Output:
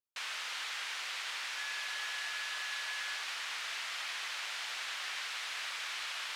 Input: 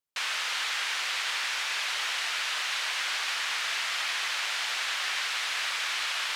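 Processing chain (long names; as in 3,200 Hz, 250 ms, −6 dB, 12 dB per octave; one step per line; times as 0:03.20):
0:01.56–0:03.21: steady tone 1,700 Hz −33 dBFS
level −9 dB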